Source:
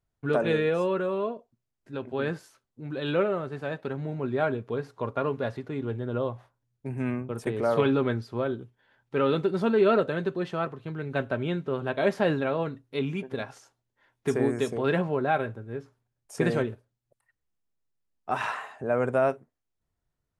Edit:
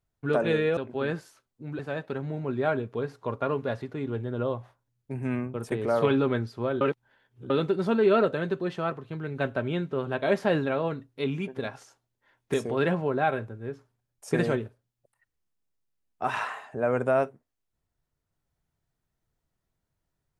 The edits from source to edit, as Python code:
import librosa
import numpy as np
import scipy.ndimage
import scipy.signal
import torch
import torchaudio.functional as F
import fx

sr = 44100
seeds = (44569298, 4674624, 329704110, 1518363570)

y = fx.edit(x, sr, fx.cut(start_s=0.77, length_s=1.18),
    fx.cut(start_s=2.97, length_s=0.57),
    fx.reverse_span(start_s=8.56, length_s=0.69),
    fx.cut(start_s=14.29, length_s=0.32), tone=tone)